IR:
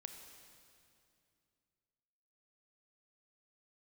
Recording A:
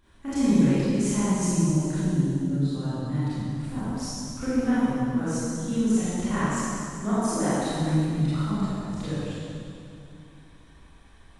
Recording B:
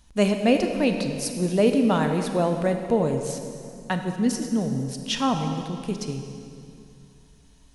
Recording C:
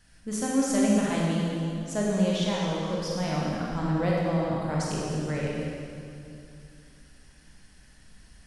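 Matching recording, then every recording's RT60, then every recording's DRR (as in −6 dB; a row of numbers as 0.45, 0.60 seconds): B; 2.5, 2.5, 2.5 seconds; −13.5, 5.0, −4.5 decibels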